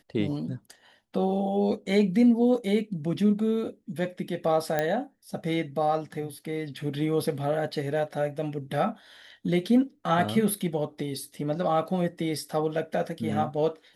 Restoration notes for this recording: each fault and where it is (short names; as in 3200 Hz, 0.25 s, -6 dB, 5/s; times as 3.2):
4.79 pop -12 dBFS